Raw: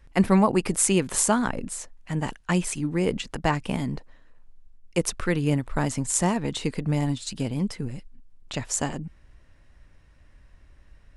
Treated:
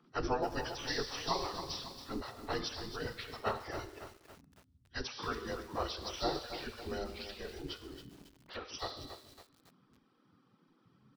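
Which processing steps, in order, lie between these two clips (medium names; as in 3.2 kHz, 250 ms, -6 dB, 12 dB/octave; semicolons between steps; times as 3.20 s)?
frequency axis rescaled in octaves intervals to 83%; FFT filter 210 Hz 0 dB, 360 Hz -4 dB, 600 Hz -17 dB, 1.1 kHz -11 dB, 1.8 kHz -17 dB, 3.6 kHz -11 dB; reverb removal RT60 0.97 s; hum notches 50/100/150/200/250/300/350/400/450/500 Hz; speakerphone echo 130 ms, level -22 dB; Schroeder reverb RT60 1.1 s, combs from 31 ms, DRR 11 dB; spectral gate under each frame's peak -20 dB weak; bit-crushed delay 277 ms, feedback 55%, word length 10-bit, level -9.5 dB; trim +9.5 dB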